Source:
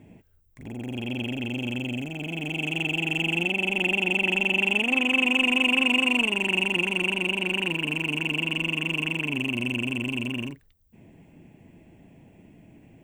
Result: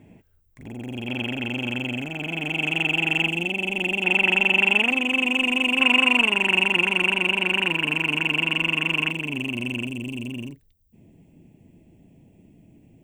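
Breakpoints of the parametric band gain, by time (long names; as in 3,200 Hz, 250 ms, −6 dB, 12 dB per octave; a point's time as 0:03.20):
parametric band 1,400 Hz 1.8 octaves
+1 dB
from 0:01.08 +10.5 dB
from 0:03.28 −1 dB
from 0:04.04 +10 dB
from 0:04.91 0 dB
from 0:05.80 +10 dB
from 0:09.11 −1.5 dB
from 0:09.87 −13 dB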